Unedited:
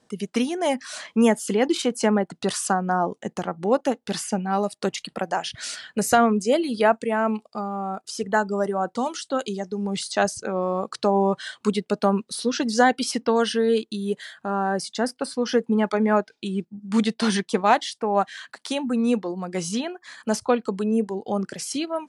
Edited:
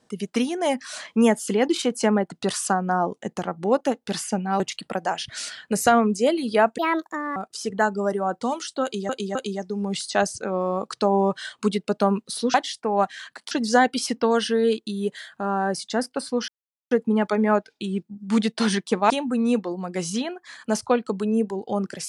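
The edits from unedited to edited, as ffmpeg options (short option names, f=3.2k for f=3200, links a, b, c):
-filter_complex "[0:a]asplit=10[a][b][c][d][e][f][g][h][i][j];[a]atrim=end=4.602[k];[b]atrim=start=4.858:end=7.044[l];[c]atrim=start=7.04:end=7.9,asetpts=PTS-STARTPTS,asetrate=65268,aresample=44100[m];[d]atrim=start=7.896:end=9.632[n];[e]atrim=start=9.368:end=9.632[o];[f]atrim=start=9.368:end=12.562[p];[g]atrim=start=17.718:end=18.692[q];[h]atrim=start=12.558:end=15.53,asetpts=PTS-STARTPTS,afade=t=out:st=2.968:d=0.004:c=hsin,apad=pad_dur=0.43[r];[i]atrim=start=15.53:end=17.722,asetpts=PTS-STARTPTS,afade=t=in:d=0.004:c=hsin[s];[j]atrim=start=18.688[t];[k][l]acrossfade=d=0.004:c1=hsin:c2=hsin[u];[u][m]acrossfade=d=0.004:c1=hsin:c2=hsin[v];[v][n]acrossfade=d=0.004:c1=hsin:c2=hsin[w];[w][o]acrossfade=d=0.004:c1=hsin:c2=hsin[x];[x][p]acrossfade=d=0.004:c1=hsin:c2=hsin[y];[y][q]acrossfade=d=0.004:c1=hsin:c2=hsin[z];[r][s]concat=n=2:v=0:a=1[aa];[z][aa]acrossfade=d=0.004:c1=hsin:c2=hsin[ab];[ab][t]acrossfade=d=0.004:c1=hsin:c2=hsin"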